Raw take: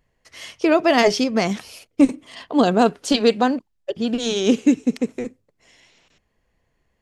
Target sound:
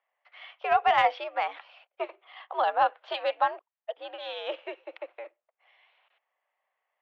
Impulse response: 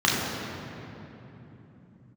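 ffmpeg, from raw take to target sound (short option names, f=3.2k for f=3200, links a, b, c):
-af "highpass=f=600:t=q:w=0.5412,highpass=f=600:t=q:w=1.307,lowpass=f=3.4k:t=q:w=0.5176,lowpass=f=3.4k:t=q:w=0.7071,lowpass=f=3.4k:t=q:w=1.932,afreqshift=84,aeval=exprs='0.473*(cos(1*acos(clip(val(0)/0.473,-1,1)))-cos(1*PI/2))+0.0376*(cos(3*acos(clip(val(0)/0.473,-1,1)))-cos(3*PI/2))':c=same,highshelf=f=2.5k:g=-11"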